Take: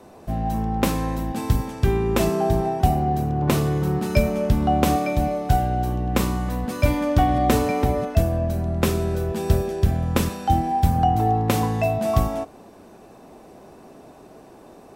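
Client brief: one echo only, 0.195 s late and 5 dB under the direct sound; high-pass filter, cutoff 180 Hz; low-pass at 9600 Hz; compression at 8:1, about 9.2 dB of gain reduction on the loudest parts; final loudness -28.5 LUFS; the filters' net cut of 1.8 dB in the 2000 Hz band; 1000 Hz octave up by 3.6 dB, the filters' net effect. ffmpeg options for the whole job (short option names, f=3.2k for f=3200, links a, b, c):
-af "highpass=180,lowpass=9.6k,equalizer=f=1k:t=o:g=6.5,equalizer=f=2k:t=o:g=-4.5,acompressor=threshold=-23dB:ratio=8,aecho=1:1:195:0.562,volume=-1.5dB"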